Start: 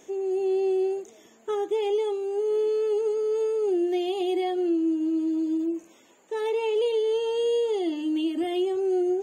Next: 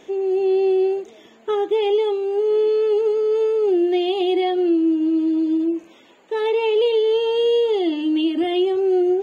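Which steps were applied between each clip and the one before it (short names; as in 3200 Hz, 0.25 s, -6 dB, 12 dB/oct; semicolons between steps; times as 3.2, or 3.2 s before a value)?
resonant high shelf 5200 Hz -10 dB, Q 1.5; gain +6.5 dB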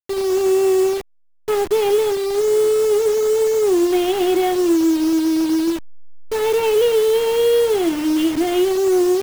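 level-crossing sampler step -25.5 dBFS; gain +2.5 dB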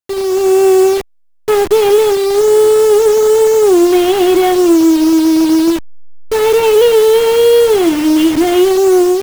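AGC gain up to 5 dB; in parallel at -4.5 dB: one-sided clip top -18 dBFS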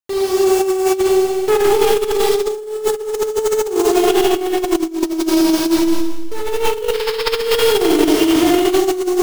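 painted sound noise, 6.93–7.3, 810–5400 Hz -16 dBFS; Schroeder reverb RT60 2.1 s, combs from 27 ms, DRR -4 dB; negative-ratio compressor -7 dBFS, ratio -0.5; gain -7.5 dB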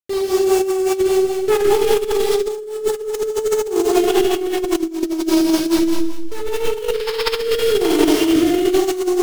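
rotary speaker horn 5 Hz, later 1.1 Hz, at 6.39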